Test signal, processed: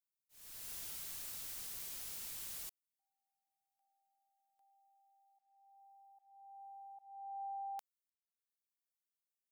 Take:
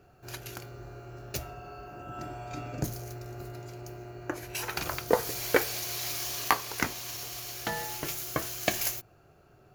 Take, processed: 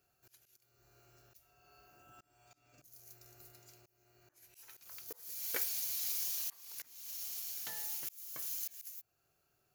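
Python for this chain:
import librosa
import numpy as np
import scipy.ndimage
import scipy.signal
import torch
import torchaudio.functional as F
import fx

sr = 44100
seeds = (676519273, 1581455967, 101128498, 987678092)

y = F.preemphasis(torch.from_numpy(x), 0.9).numpy()
y = fx.auto_swell(y, sr, attack_ms=444.0)
y = y * librosa.db_to_amplitude(-3.5)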